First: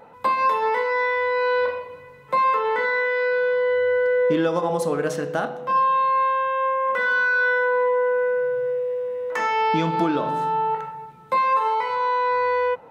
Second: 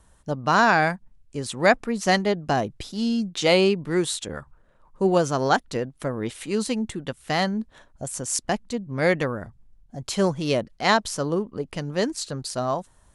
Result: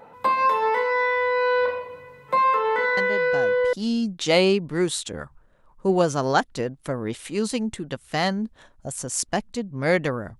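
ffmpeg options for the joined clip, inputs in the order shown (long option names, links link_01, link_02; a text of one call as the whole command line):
ffmpeg -i cue0.wav -i cue1.wav -filter_complex "[1:a]asplit=2[link_01][link_02];[0:a]apad=whole_dur=10.39,atrim=end=10.39,atrim=end=3.732[link_03];[link_02]atrim=start=2.888:end=9.55[link_04];[link_01]atrim=start=2.13:end=2.89,asetpts=PTS-STARTPTS,volume=-10dB,afade=type=in:duration=0.004:curve=hsin,afade=type=out:start_time=0.756:duration=0.004:curve=hsin,adelay=2970[link_05];[link_03][link_04]acrossfade=duration=0.004:curve1=hsin:curve2=hsin[link_06];[link_06][link_05]amix=inputs=2:normalize=0" out.wav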